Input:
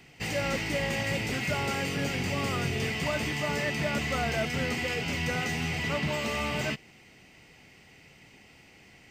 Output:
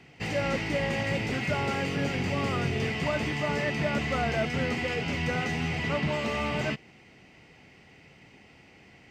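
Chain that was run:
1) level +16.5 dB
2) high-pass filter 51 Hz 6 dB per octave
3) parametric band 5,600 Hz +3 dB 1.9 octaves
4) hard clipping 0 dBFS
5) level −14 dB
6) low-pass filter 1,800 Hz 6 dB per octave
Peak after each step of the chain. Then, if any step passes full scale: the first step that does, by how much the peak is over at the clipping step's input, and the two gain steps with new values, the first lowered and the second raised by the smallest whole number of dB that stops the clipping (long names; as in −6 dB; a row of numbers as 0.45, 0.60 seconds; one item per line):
−5.0, −3.5, −3.0, −3.0, −17.0, −18.5 dBFS
no step passes full scale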